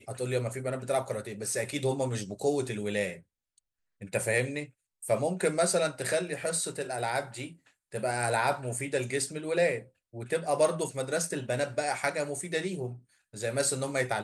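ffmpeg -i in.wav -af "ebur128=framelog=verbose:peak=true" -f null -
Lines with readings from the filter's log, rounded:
Integrated loudness:
  I:         -30.6 LUFS
  Threshold: -41.1 LUFS
Loudness range:
  LRA:         2.5 LU
  Threshold: -51.1 LUFS
  LRA low:   -32.4 LUFS
  LRA high:  -30.0 LUFS
True peak:
  Peak:      -12.2 dBFS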